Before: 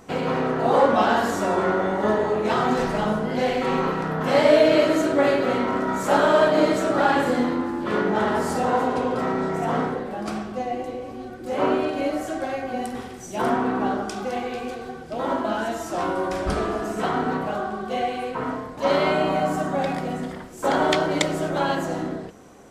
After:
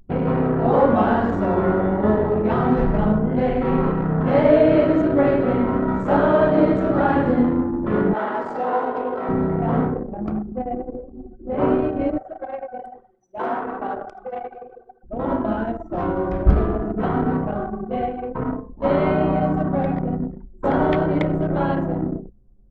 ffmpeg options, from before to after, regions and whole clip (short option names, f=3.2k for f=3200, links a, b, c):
-filter_complex "[0:a]asettb=1/sr,asplit=3[a][b][c];[a]atrim=end=8.134[d];[b]atrim=start=8.13:end=9.29,asetpts=PTS-STARTPTS,afade=t=in:d=0.004:c=qsin,afade=t=out:st=1.156:d=0.004:c=qsin,highpass=490,equalizer=f=10k:w=3.7:g=-3.5,asplit=2[e][f];[f]adelay=20,volume=-7.5dB[g];[e][g]amix=inputs=2:normalize=0,atrim=end_sample=51156[h];[c]atrim=start=9.286[i];[d][h]acrossfade=d=0.004:c1=hsin:c2=qsin[j];[j][i]acrossfade=d=0.004:c1=qsin:c2=hsin,asettb=1/sr,asplit=3[k][l][m];[k]atrim=end=12.184[n];[l]atrim=start=12.18:end=15.04,asetpts=PTS-STARTPTS,afade=t=in:d=0.004:c=qsin,afade=t=out:st=2.856:d=0.004:c=qsin,highpass=510,aecho=1:1:80:0.422,atrim=end_sample=126126[o];[m]atrim=start=15.036[p];[n][o]acrossfade=d=0.004:c1=hsin:c2=qsin[q];[q][p]acrossfade=d=0.004:c1=qsin:c2=hsin,anlmdn=158,aemphasis=mode=reproduction:type=riaa,acrossover=split=3100[r][s];[s]acompressor=threshold=-54dB:ratio=4:attack=1:release=60[t];[r][t]amix=inputs=2:normalize=0,volume=-1dB"